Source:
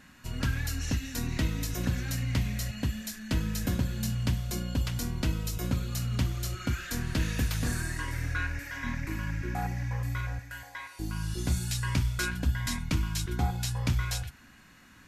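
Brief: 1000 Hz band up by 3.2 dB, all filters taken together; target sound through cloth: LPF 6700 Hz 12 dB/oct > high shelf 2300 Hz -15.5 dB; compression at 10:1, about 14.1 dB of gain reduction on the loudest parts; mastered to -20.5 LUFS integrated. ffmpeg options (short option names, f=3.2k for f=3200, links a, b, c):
-af "equalizer=f=1k:t=o:g=7.5,acompressor=threshold=-37dB:ratio=10,lowpass=6.7k,highshelf=f=2.3k:g=-15.5,volume=23dB"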